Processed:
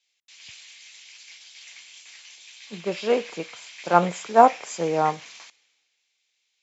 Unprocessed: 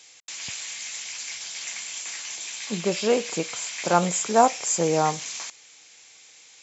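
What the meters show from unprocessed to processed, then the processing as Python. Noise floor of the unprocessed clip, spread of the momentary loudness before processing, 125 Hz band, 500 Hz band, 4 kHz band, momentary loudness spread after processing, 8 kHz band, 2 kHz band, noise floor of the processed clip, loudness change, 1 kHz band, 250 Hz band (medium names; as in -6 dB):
-52 dBFS, 12 LU, -3.0 dB, +0.5 dB, -7.0 dB, 20 LU, no reading, -2.0 dB, -75 dBFS, +3.5 dB, +3.0 dB, -2.0 dB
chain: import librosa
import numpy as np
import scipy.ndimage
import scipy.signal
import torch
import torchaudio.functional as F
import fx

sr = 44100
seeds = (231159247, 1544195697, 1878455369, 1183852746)

y = scipy.signal.sosfilt(scipy.signal.butter(2, 3400.0, 'lowpass', fs=sr, output='sos'), x)
y = fx.low_shelf(y, sr, hz=160.0, db=-8.5)
y = fx.band_widen(y, sr, depth_pct=70)
y = F.gain(torch.from_numpy(y), -2.0).numpy()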